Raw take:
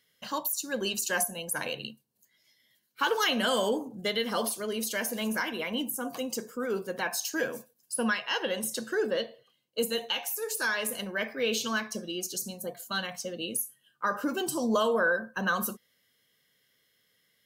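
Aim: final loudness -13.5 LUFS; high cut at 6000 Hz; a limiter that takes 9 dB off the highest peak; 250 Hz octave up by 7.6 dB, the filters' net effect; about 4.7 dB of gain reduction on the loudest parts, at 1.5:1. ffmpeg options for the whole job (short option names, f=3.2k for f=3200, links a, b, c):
-af "lowpass=6k,equalizer=f=250:t=o:g=9,acompressor=threshold=-31dB:ratio=1.5,volume=22dB,alimiter=limit=-4.5dB:level=0:latency=1"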